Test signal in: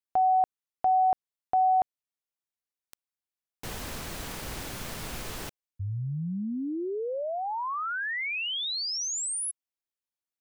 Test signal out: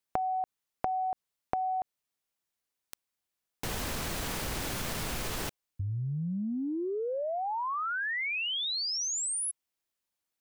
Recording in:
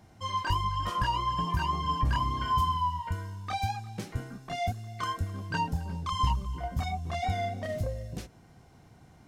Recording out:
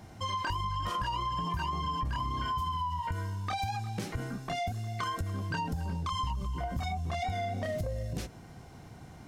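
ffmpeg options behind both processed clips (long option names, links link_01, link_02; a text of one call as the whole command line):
ffmpeg -i in.wav -af "acompressor=threshold=-39dB:ratio=6:attack=11:release=65:knee=6:detection=peak,volume=6.5dB" out.wav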